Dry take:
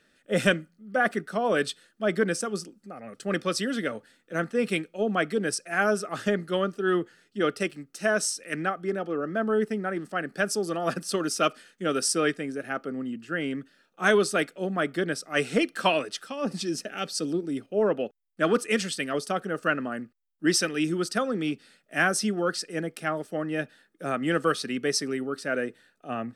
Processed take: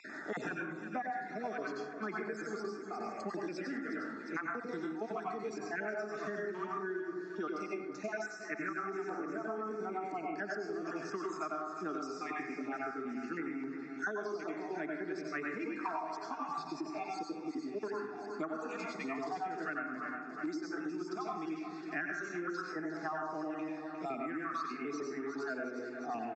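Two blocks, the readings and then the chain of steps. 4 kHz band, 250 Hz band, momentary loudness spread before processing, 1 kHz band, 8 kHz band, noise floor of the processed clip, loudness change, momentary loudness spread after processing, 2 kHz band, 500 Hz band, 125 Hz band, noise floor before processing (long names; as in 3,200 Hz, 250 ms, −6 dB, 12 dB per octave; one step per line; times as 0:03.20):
−22.0 dB, −10.5 dB, 9 LU, −7.5 dB, −23.5 dB, −46 dBFS, −11.5 dB, 3 LU, −11.5 dB, −12.5 dB, −17.0 dB, −68 dBFS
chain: time-frequency cells dropped at random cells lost 34%
dense smooth reverb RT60 0.61 s, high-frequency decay 0.45×, pre-delay 80 ms, DRR −2 dB
harmonic and percussive parts rebalanced percussive −4 dB
auto-filter notch saw down 0.44 Hz 570–3,100 Hz
parametric band 1,500 Hz −9.5 dB 1 octave
phaser with its sweep stopped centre 1,300 Hz, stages 4
downward compressor, threshold −35 dBFS, peak gain reduction 14.5 dB
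three-way crossover with the lows and the highs turned down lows −15 dB, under 360 Hz, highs −16 dB, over 3,200 Hz
on a send: repeating echo 356 ms, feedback 47%, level −14 dB
on the sum: downsampling to 16,000 Hz
high-pass filter 210 Hz 12 dB per octave
multiband upward and downward compressor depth 100%
level +5 dB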